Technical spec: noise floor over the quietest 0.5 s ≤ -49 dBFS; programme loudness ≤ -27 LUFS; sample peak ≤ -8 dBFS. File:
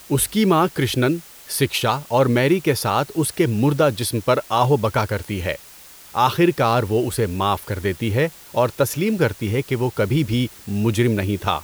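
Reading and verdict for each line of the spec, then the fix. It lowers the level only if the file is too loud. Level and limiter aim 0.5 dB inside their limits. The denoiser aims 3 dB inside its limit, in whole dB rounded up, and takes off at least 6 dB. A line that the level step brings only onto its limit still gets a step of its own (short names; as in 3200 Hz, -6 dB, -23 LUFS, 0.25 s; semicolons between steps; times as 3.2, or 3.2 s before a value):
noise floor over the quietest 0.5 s -44 dBFS: fail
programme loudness -20.5 LUFS: fail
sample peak -5.5 dBFS: fail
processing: gain -7 dB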